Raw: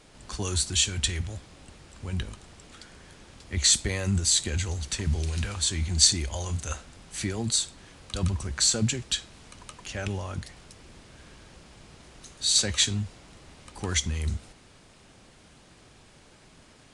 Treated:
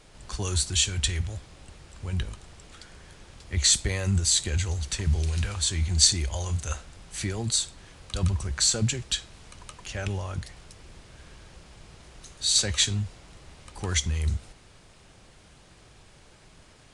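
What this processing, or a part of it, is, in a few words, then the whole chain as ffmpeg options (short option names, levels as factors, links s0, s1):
low shelf boost with a cut just above: -af "lowshelf=f=77:g=6,equalizer=f=250:t=o:w=0.6:g=-5"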